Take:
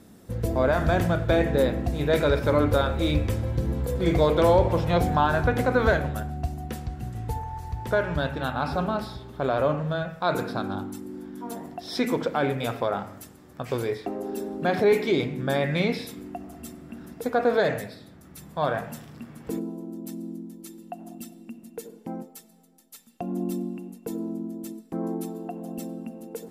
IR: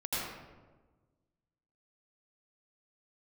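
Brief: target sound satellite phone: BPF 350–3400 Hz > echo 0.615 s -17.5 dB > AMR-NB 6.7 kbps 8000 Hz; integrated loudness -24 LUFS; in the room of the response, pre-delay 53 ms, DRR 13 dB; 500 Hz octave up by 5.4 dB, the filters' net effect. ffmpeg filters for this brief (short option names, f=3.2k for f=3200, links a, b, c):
-filter_complex "[0:a]equalizer=f=500:t=o:g=7.5,asplit=2[a][b];[1:a]atrim=start_sample=2205,adelay=53[c];[b][c]afir=irnorm=-1:irlink=0,volume=-19dB[d];[a][d]amix=inputs=2:normalize=0,highpass=350,lowpass=3.4k,aecho=1:1:615:0.133,volume=-1dB" -ar 8000 -c:a libopencore_amrnb -b:a 6700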